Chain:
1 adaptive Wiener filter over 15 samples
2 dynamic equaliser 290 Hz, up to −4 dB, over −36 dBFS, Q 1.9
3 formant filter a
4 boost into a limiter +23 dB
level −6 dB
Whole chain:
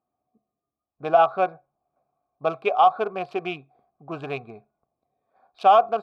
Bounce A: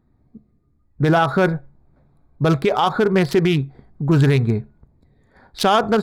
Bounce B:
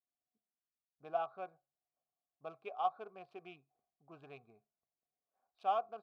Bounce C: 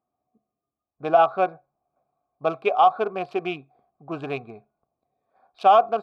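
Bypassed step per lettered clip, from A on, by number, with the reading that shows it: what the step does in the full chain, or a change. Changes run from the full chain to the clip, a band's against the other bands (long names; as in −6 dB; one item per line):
3, 125 Hz band +16.5 dB
4, change in crest factor +5.0 dB
2, change in momentary loudness spread −1 LU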